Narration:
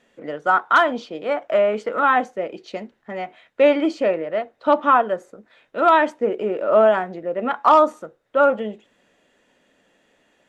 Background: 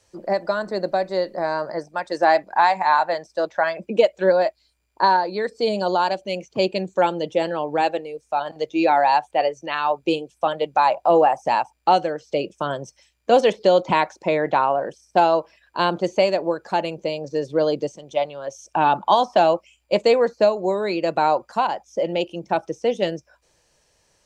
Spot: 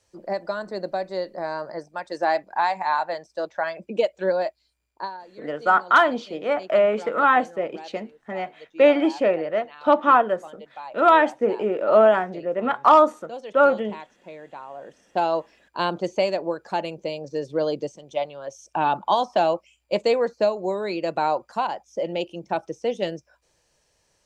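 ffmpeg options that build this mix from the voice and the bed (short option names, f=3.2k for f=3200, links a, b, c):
-filter_complex "[0:a]adelay=5200,volume=-0.5dB[a];[1:a]volume=11dB,afade=t=out:st=4.87:d=0.24:silence=0.177828,afade=t=in:st=14.69:d=0.72:silence=0.149624[b];[a][b]amix=inputs=2:normalize=0"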